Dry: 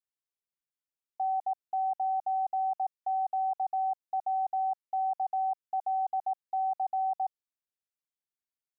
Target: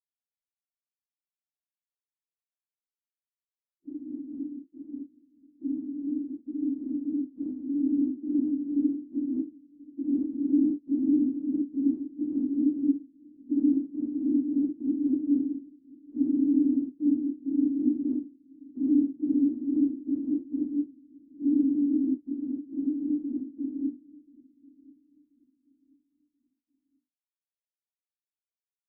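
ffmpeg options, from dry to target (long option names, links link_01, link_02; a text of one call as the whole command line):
ffmpeg -i in.wav -filter_complex "[0:a]afftdn=noise_reduction=36:noise_floor=-39,asetrate=53981,aresample=44100,atempo=0.816958,flanger=delay=7.3:depth=7.8:regen=27:speed=0.6:shape=sinusoidal,dynaudnorm=framelen=390:gausssize=11:maxgain=13dB,bandreject=frequency=50:width_type=h:width=6,bandreject=frequency=100:width_type=h:width=6,bandreject=frequency=150:width_type=h:width=6,bandreject=frequency=200:width_type=h:width=6,afftfilt=real='hypot(re,im)*cos(2*PI*random(0))':imag='hypot(re,im)*sin(2*PI*random(1))':win_size=512:overlap=0.75,asplit=2[link_01][link_02];[link_02]adelay=314,lowpass=frequency=860:poles=1,volume=-20dB,asplit=2[link_03][link_04];[link_04]adelay=314,lowpass=frequency=860:poles=1,volume=0.43,asplit=2[link_05][link_06];[link_06]adelay=314,lowpass=frequency=860:poles=1,volume=0.43[link_07];[link_03][link_05][link_07]amix=inputs=3:normalize=0[link_08];[link_01][link_08]amix=inputs=2:normalize=0,asetrate=13406,aresample=44100" out.wav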